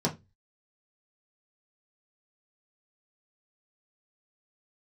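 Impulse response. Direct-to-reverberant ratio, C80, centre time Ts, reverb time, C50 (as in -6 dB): -3.5 dB, 25.0 dB, 12 ms, 0.20 s, 16.0 dB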